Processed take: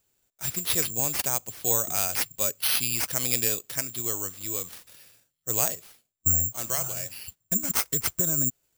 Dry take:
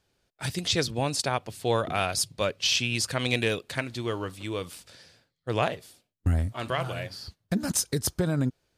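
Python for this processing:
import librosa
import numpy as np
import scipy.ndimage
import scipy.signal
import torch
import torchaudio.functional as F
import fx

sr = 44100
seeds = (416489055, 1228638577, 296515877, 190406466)

y = (np.kron(x[::6], np.eye(6)[0]) * 6)[:len(x)]
y = y * librosa.db_to_amplitude(-7.0)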